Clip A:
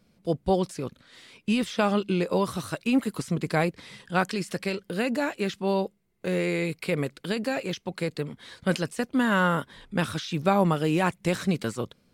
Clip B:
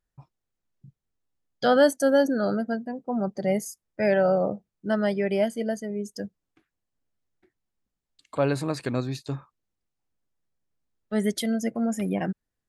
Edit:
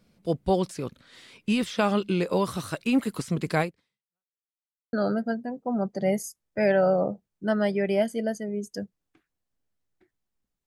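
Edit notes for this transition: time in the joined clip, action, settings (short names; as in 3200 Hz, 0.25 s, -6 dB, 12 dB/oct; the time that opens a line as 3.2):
clip A
3.61–4.38 fade out exponential
4.38–4.93 mute
4.93 switch to clip B from 2.35 s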